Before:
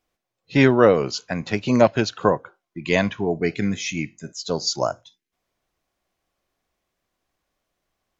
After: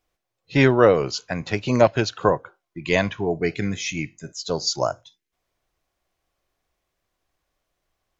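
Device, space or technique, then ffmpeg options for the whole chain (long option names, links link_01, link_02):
low shelf boost with a cut just above: -af "lowshelf=frequency=90:gain=5,equalizer=frequency=220:width_type=o:width=0.64:gain=-5.5"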